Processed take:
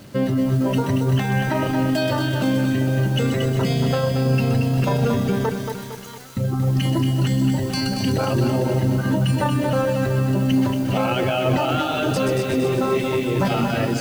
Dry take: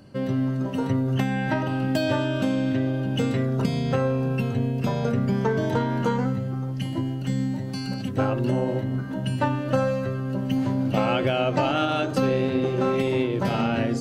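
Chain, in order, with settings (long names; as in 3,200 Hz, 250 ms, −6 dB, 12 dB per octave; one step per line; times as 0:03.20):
automatic gain control gain up to 11.5 dB
brickwall limiter −18 dBFS, peak gain reduction 16 dB
reverb reduction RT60 1.4 s
0:05.49–0:06.37: first-order pre-emphasis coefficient 0.97
bit reduction 9 bits
delay with a high-pass on its return 127 ms, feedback 79%, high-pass 4,600 Hz, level −4 dB
feedback echo at a low word length 229 ms, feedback 55%, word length 8 bits, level −5.5 dB
level +6.5 dB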